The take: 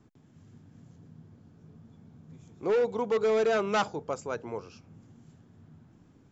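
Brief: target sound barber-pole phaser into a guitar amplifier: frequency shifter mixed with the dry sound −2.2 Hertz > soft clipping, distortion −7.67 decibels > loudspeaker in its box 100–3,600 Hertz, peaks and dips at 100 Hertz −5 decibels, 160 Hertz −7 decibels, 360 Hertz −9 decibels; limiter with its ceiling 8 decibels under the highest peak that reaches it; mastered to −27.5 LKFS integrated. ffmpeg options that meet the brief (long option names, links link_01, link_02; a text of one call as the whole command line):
ffmpeg -i in.wav -filter_complex "[0:a]alimiter=level_in=4dB:limit=-24dB:level=0:latency=1,volume=-4dB,asplit=2[link_01][link_02];[link_02]afreqshift=-2.2[link_03];[link_01][link_03]amix=inputs=2:normalize=1,asoftclip=threshold=-39.5dB,highpass=100,equalizer=frequency=100:width_type=q:width=4:gain=-5,equalizer=frequency=160:width_type=q:width=4:gain=-7,equalizer=frequency=360:width_type=q:width=4:gain=-9,lowpass=frequency=3600:width=0.5412,lowpass=frequency=3600:width=1.3066,volume=19dB" out.wav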